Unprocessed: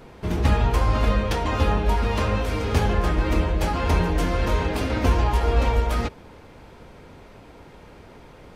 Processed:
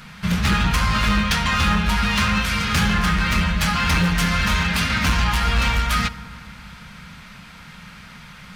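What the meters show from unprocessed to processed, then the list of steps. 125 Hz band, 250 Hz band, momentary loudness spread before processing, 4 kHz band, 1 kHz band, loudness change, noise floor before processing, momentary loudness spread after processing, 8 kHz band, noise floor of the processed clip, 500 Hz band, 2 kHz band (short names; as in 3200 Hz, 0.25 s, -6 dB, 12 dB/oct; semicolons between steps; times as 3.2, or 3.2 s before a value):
+1.0 dB, +4.5 dB, 3 LU, +11.5 dB, +3.5 dB, +3.5 dB, -47 dBFS, 4 LU, +11.0 dB, -42 dBFS, -9.0 dB, +10.5 dB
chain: EQ curve 110 Hz 0 dB, 190 Hz +13 dB, 330 Hz -17 dB, 880 Hz -1 dB, 1300 Hz +11 dB, 4400 Hz +13 dB, 7600 Hz +11 dB; hard clip -14 dBFS, distortion -14 dB; FDN reverb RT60 2.5 s, low-frequency decay 1.55×, high-frequency decay 0.35×, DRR 15 dB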